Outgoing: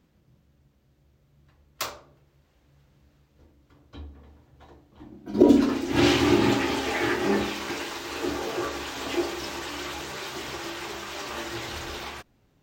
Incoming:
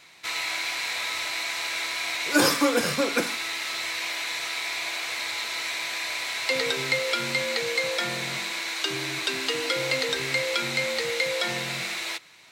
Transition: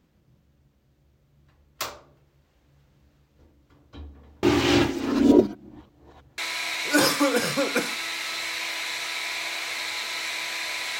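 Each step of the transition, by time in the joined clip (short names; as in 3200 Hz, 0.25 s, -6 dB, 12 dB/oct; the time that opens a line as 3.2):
outgoing
4.43–6.38 reverse
6.38 switch to incoming from 1.79 s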